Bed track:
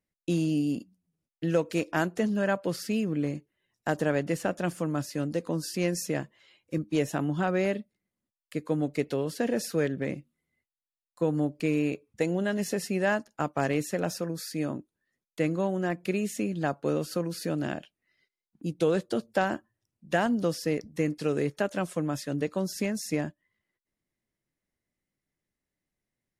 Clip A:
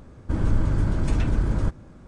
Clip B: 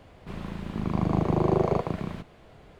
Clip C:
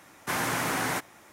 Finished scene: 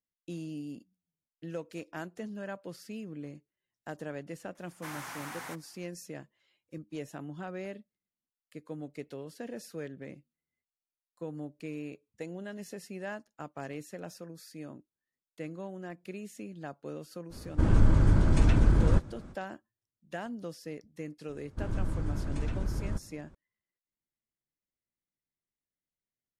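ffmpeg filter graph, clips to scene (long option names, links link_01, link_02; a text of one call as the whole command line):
ffmpeg -i bed.wav -i cue0.wav -i cue1.wav -i cue2.wav -filter_complex "[1:a]asplit=2[link_01][link_02];[0:a]volume=-13dB[link_03];[3:a]lowshelf=frequency=640:width_type=q:width=1.5:gain=-6,atrim=end=1.32,asetpts=PTS-STARTPTS,volume=-13.5dB,afade=type=in:duration=0.004:curve=hsin,afade=type=out:start_time=1.316:duration=0.004:curve=hsin,adelay=4550[link_04];[link_01]atrim=end=2.07,asetpts=PTS-STARTPTS,afade=type=in:duration=0.05,afade=type=out:start_time=2.02:duration=0.05,adelay=17290[link_05];[link_02]atrim=end=2.07,asetpts=PTS-STARTPTS,volume=-10.5dB,afade=type=in:duration=0.004:curve=hsin,afade=type=out:start_time=2.066:duration=0.004:curve=hsin,adelay=21280[link_06];[link_03][link_04][link_05][link_06]amix=inputs=4:normalize=0" out.wav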